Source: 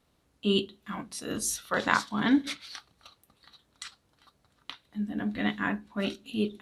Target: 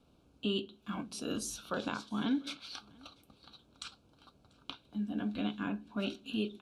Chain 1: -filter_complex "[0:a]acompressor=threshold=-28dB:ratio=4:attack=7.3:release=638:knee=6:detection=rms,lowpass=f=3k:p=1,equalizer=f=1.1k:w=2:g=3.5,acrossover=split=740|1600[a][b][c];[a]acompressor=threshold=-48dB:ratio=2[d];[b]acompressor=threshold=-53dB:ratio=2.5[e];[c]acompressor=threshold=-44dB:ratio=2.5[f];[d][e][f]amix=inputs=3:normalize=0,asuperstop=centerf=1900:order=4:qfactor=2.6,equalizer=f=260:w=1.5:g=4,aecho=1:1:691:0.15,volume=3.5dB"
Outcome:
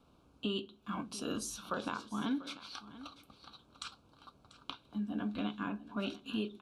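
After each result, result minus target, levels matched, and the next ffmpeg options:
compressor: peak gain reduction +7 dB; echo-to-direct +10.5 dB; 1000 Hz band +3.5 dB
-filter_complex "[0:a]acompressor=threshold=-18.5dB:ratio=4:attack=7.3:release=638:knee=6:detection=rms,lowpass=f=3k:p=1,equalizer=f=1.1k:w=2:g=3.5,acrossover=split=740|1600[a][b][c];[a]acompressor=threshold=-48dB:ratio=2[d];[b]acompressor=threshold=-53dB:ratio=2.5[e];[c]acompressor=threshold=-44dB:ratio=2.5[f];[d][e][f]amix=inputs=3:normalize=0,asuperstop=centerf=1900:order=4:qfactor=2.6,equalizer=f=260:w=1.5:g=4,aecho=1:1:691:0.15,volume=3.5dB"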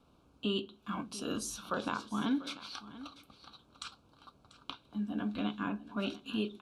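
echo-to-direct +10.5 dB; 1000 Hz band +3.5 dB
-filter_complex "[0:a]acompressor=threshold=-18.5dB:ratio=4:attack=7.3:release=638:knee=6:detection=rms,lowpass=f=3k:p=1,equalizer=f=1.1k:w=2:g=3.5,acrossover=split=740|1600[a][b][c];[a]acompressor=threshold=-48dB:ratio=2[d];[b]acompressor=threshold=-53dB:ratio=2.5[e];[c]acompressor=threshold=-44dB:ratio=2.5[f];[d][e][f]amix=inputs=3:normalize=0,asuperstop=centerf=1900:order=4:qfactor=2.6,equalizer=f=260:w=1.5:g=4,aecho=1:1:691:0.0447,volume=3.5dB"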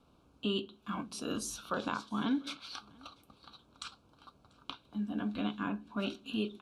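1000 Hz band +3.5 dB
-filter_complex "[0:a]acompressor=threshold=-18.5dB:ratio=4:attack=7.3:release=638:knee=6:detection=rms,lowpass=f=3k:p=1,equalizer=f=1.1k:w=2:g=-4,acrossover=split=740|1600[a][b][c];[a]acompressor=threshold=-48dB:ratio=2[d];[b]acompressor=threshold=-53dB:ratio=2.5[e];[c]acompressor=threshold=-44dB:ratio=2.5[f];[d][e][f]amix=inputs=3:normalize=0,asuperstop=centerf=1900:order=4:qfactor=2.6,equalizer=f=260:w=1.5:g=4,aecho=1:1:691:0.0447,volume=3.5dB"

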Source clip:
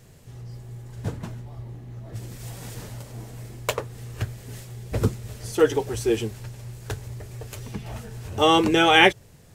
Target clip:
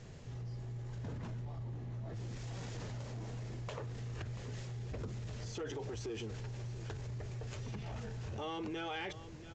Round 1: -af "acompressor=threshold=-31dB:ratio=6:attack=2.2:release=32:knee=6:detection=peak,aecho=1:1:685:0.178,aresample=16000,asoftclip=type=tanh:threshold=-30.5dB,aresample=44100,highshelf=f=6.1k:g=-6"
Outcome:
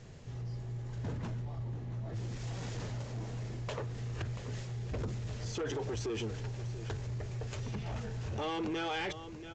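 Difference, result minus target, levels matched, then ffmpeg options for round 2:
compressor: peak gain reduction -7.5 dB
-af "acompressor=threshold=-40dB:ratio=6:attack=2.2:release=32:knee=6:detection=peak,aecho=1:1:685:0.178,aresample=16000,asoftclip=type=tanh:threshold=-30.5dB,aresample=44100,highshelf=f=6.1k:g=-6"

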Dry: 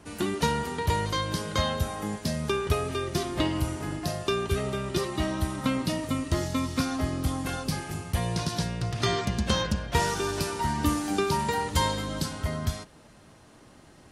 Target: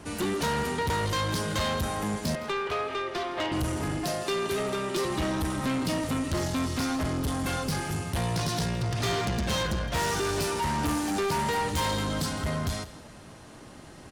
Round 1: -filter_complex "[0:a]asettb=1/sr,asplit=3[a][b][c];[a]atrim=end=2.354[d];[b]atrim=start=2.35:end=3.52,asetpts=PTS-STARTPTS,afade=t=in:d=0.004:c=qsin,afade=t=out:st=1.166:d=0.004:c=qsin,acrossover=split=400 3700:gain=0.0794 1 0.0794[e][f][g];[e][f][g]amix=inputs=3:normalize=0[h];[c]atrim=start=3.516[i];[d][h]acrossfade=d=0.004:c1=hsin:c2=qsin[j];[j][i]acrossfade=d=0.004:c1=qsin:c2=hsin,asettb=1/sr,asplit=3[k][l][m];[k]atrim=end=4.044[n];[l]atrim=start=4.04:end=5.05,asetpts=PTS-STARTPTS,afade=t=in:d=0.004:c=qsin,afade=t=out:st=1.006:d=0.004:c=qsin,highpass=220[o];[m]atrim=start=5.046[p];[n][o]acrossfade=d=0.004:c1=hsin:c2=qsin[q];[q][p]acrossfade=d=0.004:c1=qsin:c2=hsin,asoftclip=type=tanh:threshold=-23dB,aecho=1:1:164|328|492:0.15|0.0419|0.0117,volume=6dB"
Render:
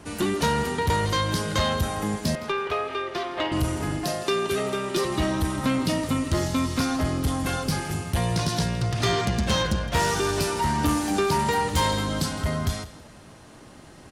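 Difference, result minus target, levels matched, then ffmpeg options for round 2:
soft clip: distortion -6 dB
-filter_complex "[0:a]asettb=1/sr,asplit=3[a][b][c];[a]atrim=end=2.354[d];[b]atrim=start=2.35:end=3.52,asetpts=PTS-STARTPTS,afade=t=in:d=0.004:c=qsin,afade=t=out:st=1.166:d=0.004:c=qsin,acrossover=split=400 3700:gain=0.0794 1 0.0794[e][f][g];[e][f][g]amix=inputs=3:normalize=0[h];[c]atrim=start=3.516[i];[d][h]acrossfade=d=0.004:c1=hsin:c2=qsin[j];[j][i]acrossfade=d=0.004:c1=qsin:c2=hsin,asettb=1/sr,asplit=3[k][l][m];[k]atrim=end=4.044[n];[l]atrim=start=4.04:end=5.05,asetpts=PTS-STARTPTS,afade=t=in:d=0.004:c=qsin,afade=t=out:st=1.006:d=0.004:c=qsin,highpass=220[o];[m]atrim=start=5.046[p];[n][o]acrossfade=d=0.004:c1=hsin:c2=qsin[q];[q][p]acrossfade=d=0.004:c1=qsin:c2=hsin,asoftclip=type=tanh:threshold=-31dB,aecho=1:1:164|328|492:0.15|0.0419|0.0117,volume=6dB"

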